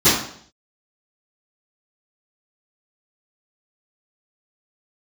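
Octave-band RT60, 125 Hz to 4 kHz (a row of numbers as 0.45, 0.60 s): 0.65, 0.60, 0.65, 0.55, 0.55, 0.60 s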